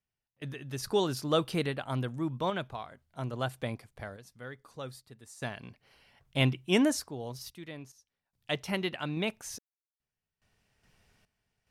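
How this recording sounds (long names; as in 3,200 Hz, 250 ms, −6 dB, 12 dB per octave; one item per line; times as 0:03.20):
sample-and-hold tremolo 2.4 Hz, depth 100%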